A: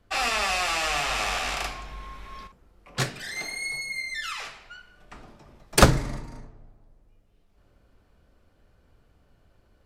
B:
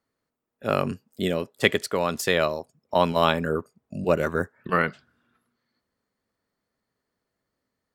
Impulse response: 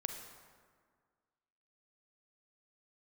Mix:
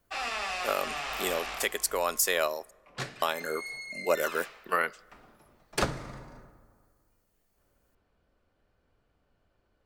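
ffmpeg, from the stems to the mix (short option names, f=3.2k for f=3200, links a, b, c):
-filter_complex "[0:a]lowshelf=f=220:g=-7,volume=-9.5dB,asplit=2[a][b];[b]volume=-7dB[c];[1:a]highpass=470,highshelf=f=5.9k:g=10,aexciter=amount=4.3:drive=3.5:freq=5.5k,volume=-3dB,asplit=3[d][e][f];[d]atrim=end=2.71,asetpts=PTS-STARTPTS,afade=t=out:st=2.706:d=0.004:c=hsin[g];[e]atrim=start=2.71:end=3.22,asetpts=PTS-STARTPTS,volume=0[h];[f]atrim=start=3.22,asetpts=PTS-STARTPTS,afade=t=in:d=0.004:c=hsin[i];[g][h][i]concat=n=3:v=0:a=1,asplit=2[j][k];[k]volume=-22.5dB[l];[2:a]atrim=start_sample=2205[m];[c][l]amix=inputs=2:normalize=0[n];[n][m]afir=irnorm=-1:irlink=0[o];[a][j][o]amix=inputs=3:normalize=0,highshelf=f=6k:g=-8.5,alimiter=limit=-13dB:level=0:latency=1:release=334"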